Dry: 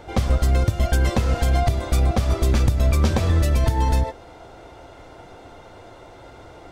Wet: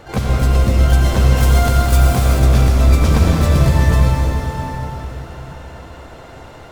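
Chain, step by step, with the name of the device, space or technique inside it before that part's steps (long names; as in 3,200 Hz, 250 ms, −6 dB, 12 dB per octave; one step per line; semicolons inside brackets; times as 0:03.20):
shimmer-style reverb (pitch-shifted copies added +12 semitones −5 dB; convolution reverb RT60 4.6 s, pre-delay 70 ms, DRR −2 dB)
0:01.37–0:02.39: high-shelf EQ 7,800 Hz +9.5 dB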